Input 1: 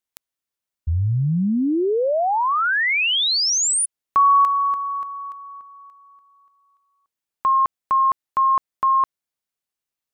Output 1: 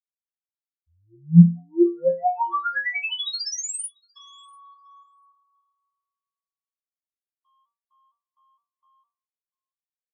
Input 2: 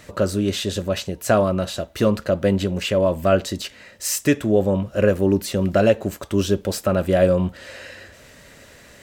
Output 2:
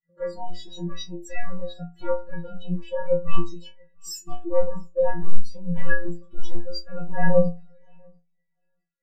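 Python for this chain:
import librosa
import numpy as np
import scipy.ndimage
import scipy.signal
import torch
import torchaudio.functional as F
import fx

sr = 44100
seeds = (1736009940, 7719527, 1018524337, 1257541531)

p1 = fx.rider(x, sr, range_db=4, speed_s=0.5)
p2 = x + F.gain(torch.from_numpy(p1), 0.0).numpy()
p3 = fx.fold_sine(p2, sr, drive_db=13, ceiling_db=2.5)
p4 = fx.stiff_resonator(p3, sr, f0_hz=170.0, decay_s=0.82, stiffness=0.008)
p5 = fx.echo_feedback(p4, sr, ms=692, feedback_pct=28, wet_db=-13.5)
p6 = fx.spectral_expand(p5, sr, expansion=2.5)
y = F.gain(torch.from_numpy(p6), 1.5).numpy()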